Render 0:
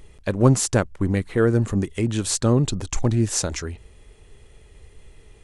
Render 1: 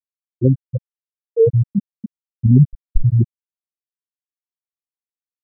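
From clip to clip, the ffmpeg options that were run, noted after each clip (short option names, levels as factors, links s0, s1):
-af "lowpass=1300,afftfilt=real='re*gte(hypot(re,im),1)':imag='im*gte(hypot(re,im),1)':win_size=1024:overlap=0.75,dynaudnorm=f=540:g=3:m=3.16,volume=1.33"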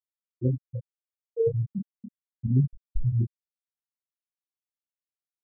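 -af "flanger=delay=22.5:depth=5.7:speed=0.37,volume=0.376"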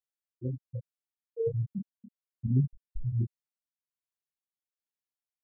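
-af "tremolo=f=1.2:d=0.53,volume=0.708"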